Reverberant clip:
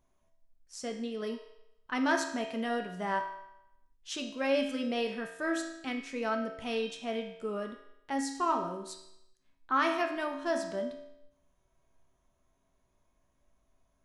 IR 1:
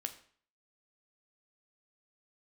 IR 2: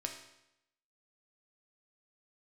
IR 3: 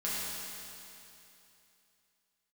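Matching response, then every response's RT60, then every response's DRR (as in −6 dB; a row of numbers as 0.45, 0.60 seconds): 2; 0.50, 0.85, 2.9 seconds; 7.0, 2.0, −9.0 decibels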